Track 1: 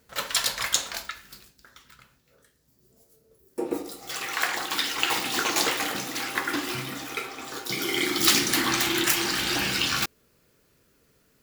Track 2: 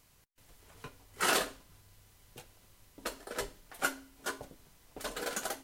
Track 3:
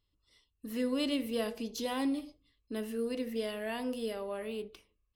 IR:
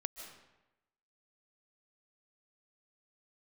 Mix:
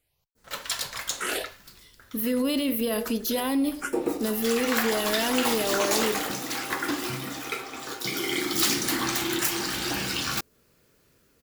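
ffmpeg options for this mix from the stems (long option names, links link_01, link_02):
-filter_complex "[0:a]dynaudnorm=framelen=450:gausssize=5:maxgain=10dB,asoftclip=type=tanh:threshold=-8dB,adynamicequalizer=threshold=0.0224:dfrequency=2600:dqfactor=0.72:tfrequency=2600:tqfactor=0.72:attack=5:release=100:ratio=0.375:range=2.5:mode=cutabove:tftype=bell,adelay=350,volume=-4.5dB[link_01];[1:a]asplit=2[link_02][link_03];[link_03]afreqshift=1.5[link_04];[link_02][link_04]amix=inputs=2:normalize=1,volume=-8dB[link_05];[2:a]aexciter=amount=4.7:drive=7.2:freq=11000,adelay=1500,volume=1dB[link_06];[link_05][link_06]amix=inputs=2:normalize=0,dynaudnorm=framelen=110:gausssize=9:maxgain=10dB,alimiter=limit=-18dB:level=0:latency=1:release=28,volume=0dB[link_07];[link_01][link_07]amix=inputs=2:normalize=0"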